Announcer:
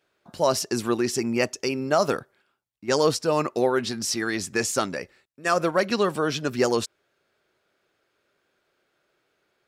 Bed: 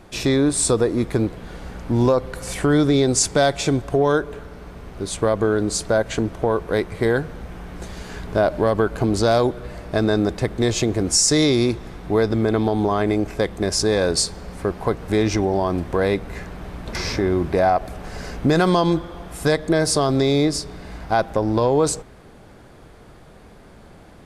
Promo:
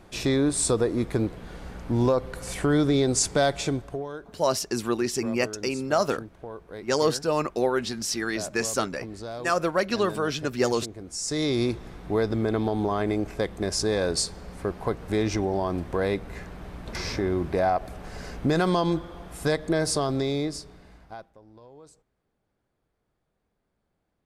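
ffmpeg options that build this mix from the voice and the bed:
-filter_complex "[0:a]adelay=4000,volume=0.794[s0];[1:a]volume=2.51,afade=t=out:st=3.56:d=0.52:silence=0.199526,afade=t=in:st=11.13:d=0.49:silence=0.223872,afade=t=out:st=19.88:d=1.44:silence=0.0501187[s1];[s0][s1]amix=inputs=2:normalize=0"

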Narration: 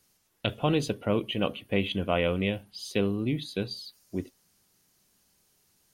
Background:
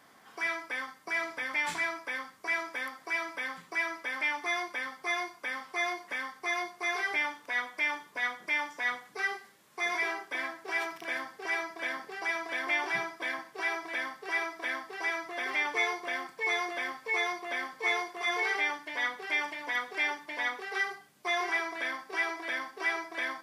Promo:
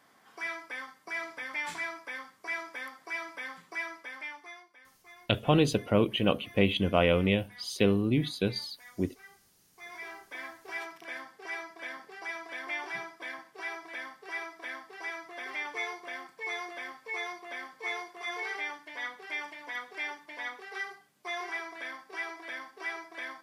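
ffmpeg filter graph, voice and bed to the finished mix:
-filter_complex "[0:a]adelay=4850,volume=1.26[s0];[1:a]volume=3.98,afade=t=out:st=3.74:d=0.91:silence=0.125893,afade=t=in:st=9.69:d=0.8:silence=0.158489[s1];[s0][s1]amix=inputs=2:normalize=0"

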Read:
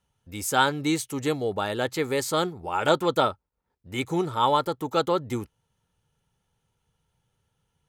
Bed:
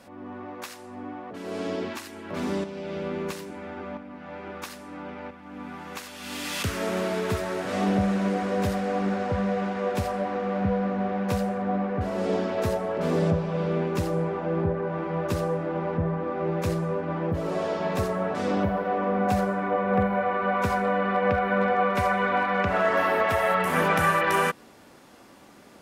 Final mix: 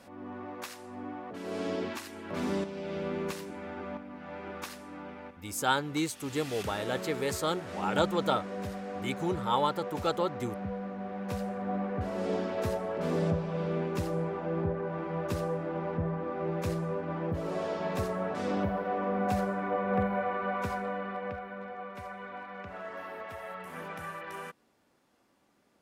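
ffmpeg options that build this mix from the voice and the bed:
-filter_complex "[0:a]adelay=5100,volume=0.501[s0];[1:a]volume=1.41,afade=t=out:st=4.68:d=0.9:silence=0.375837,afade=t=in:st=11:d=0.87:silence=0.501187,afade=t=out:st=20.16:d=1.39:silence=0.223872[s1];[s0][s1]amix=inputs=2:normalize=0"

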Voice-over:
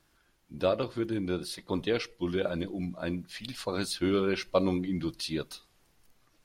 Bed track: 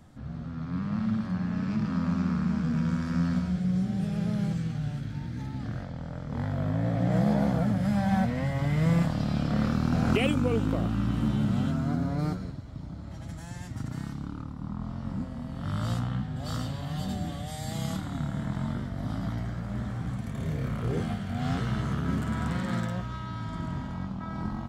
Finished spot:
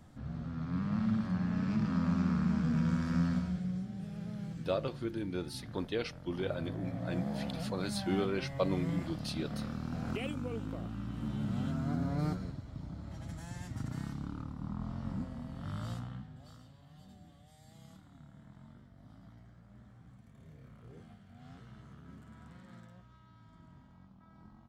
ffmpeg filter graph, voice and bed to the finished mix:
-filter_complex "[0:a]adelay=4050,volume=0.501[s0];[1:a]volume=1.88,afade=t=out:st=3.15:d=0.72:silence=0.334965,afade=t=in:st=11.12:d=1.09:silence=0.375837,afade=t=out:st=15.04:d=1.52:silence=0.105925[s1];[s0][s1]amix=inputs=2:normalize=0"

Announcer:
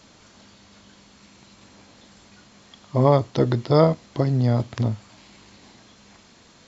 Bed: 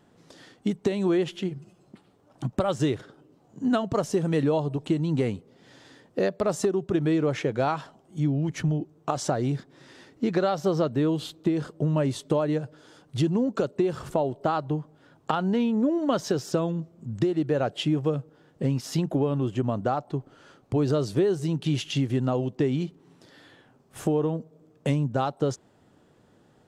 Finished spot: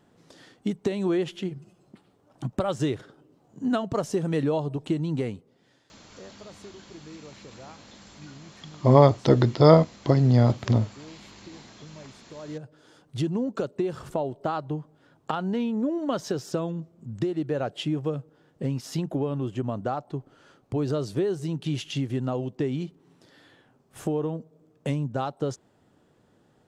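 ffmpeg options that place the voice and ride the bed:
-filter_complex "[0:a]adelay=5900,volume=1.19[s0];[1:a]volume=7.08,afade=t=out:st=5.01:d=0.98:silence=0.1,afade=t=in:st=12.34:d=0.55:silence=0.11885[s1];[s0][s1]amix=inputs=2:normalize=0"

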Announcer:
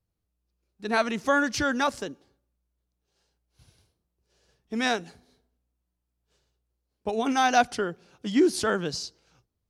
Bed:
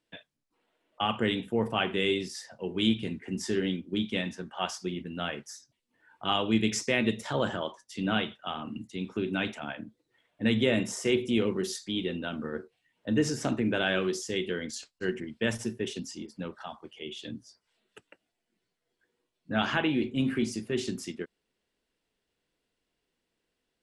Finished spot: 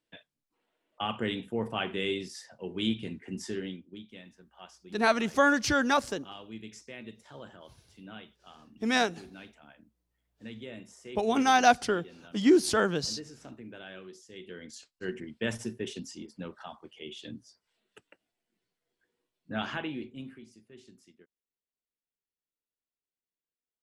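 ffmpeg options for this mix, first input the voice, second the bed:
-filter_complex "[0:a]adelay=4100,volume=1[s0];[1:a]volume=3.55,afade=t=out:st=3.35:d=0.68:silence=0.199526,afade=t=in:st=14.3:d=1.01:silence=0.177828,afade=t=out:st=19.26:d=1.15:silence=0.105925[s1];[s0][s1]amix=inputs=2:normalize=0"

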